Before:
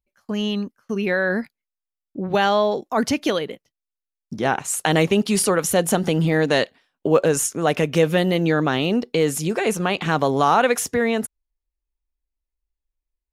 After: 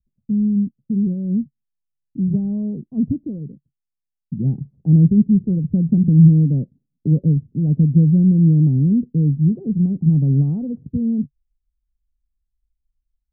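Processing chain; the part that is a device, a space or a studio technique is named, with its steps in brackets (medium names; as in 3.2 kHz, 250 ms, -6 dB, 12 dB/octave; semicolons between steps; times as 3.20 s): 3.16–4.37 s: bass shelf 420 Hz -4.5 dB; the neighbour's flat through the wall (low-pass 220 Hz 24 dB/octave; peaking EQ 140 Hz +7 dB 0.5 oct); trim +8.5 dB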